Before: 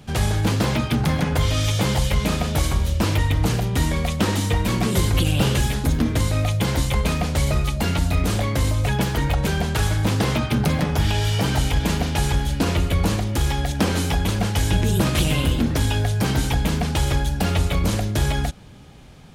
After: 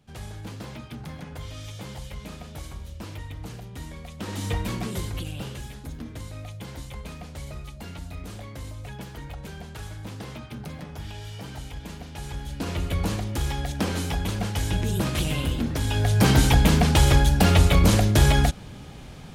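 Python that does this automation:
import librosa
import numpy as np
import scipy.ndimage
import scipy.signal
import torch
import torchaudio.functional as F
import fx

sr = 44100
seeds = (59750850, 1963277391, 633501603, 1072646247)

y = fx.gain(x, sr, db=fx.line((4.12, -17.5), (4.5, -6.0), (5.56, -17.0), (12.08, -17.0), (12.92, -6.0), (15.82, -6.0), (16.24, 3.5)))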